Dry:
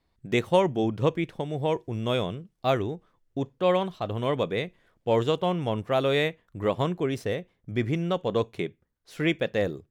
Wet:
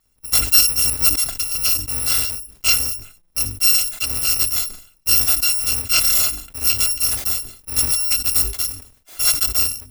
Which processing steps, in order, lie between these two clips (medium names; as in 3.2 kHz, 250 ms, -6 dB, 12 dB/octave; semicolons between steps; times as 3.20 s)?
bit-reversed sample order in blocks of 256 samples; hum notches 50/100/150/200/250/300/350/400 Hz; decay stretcher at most 110 dB/s; trim +7.5 dB